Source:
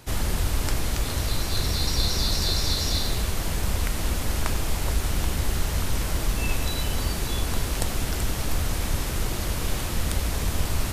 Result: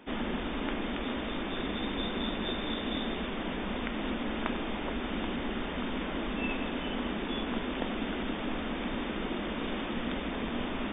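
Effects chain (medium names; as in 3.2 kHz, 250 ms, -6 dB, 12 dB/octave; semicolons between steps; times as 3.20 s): brick-wall FIR low-pass 3.7 kHz; resonant low shelf 160 Hz -13 dB, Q 3; trim -3 dB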